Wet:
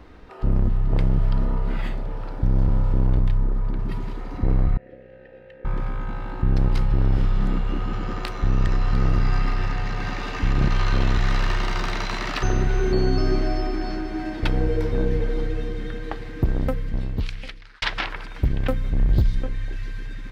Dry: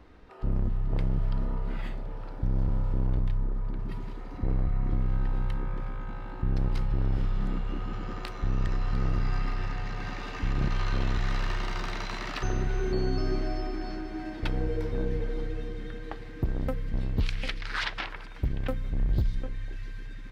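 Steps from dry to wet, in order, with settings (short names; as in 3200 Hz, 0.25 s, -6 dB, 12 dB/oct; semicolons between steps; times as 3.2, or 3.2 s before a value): 4.77–5.65 vowel filter e; 16.54–17.82 fade out; gain +7.5 dB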